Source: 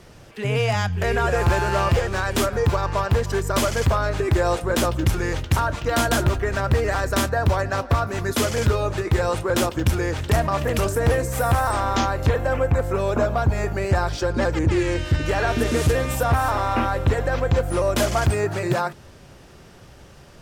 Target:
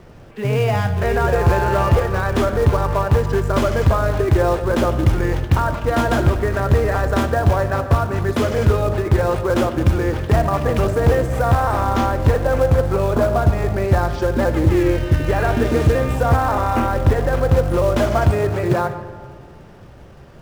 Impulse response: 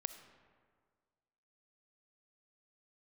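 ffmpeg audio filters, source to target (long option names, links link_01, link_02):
-filter_complex "[0:a]lowpass=frequency=1300:poles=1,asplit=2[link_01][link_02];[link_02]acrusher=bits=3:mode=log:mix=0:aa=0.000001,volume=-4.5dB[link_03];[link_01][link_03]amix=inputs=2:normalize=0[link_04];[1:a]atrim=start_sample=2205[link_05];[link_04][link_05]afir=irnorm=-1:irlink=0,volume=2.5dB"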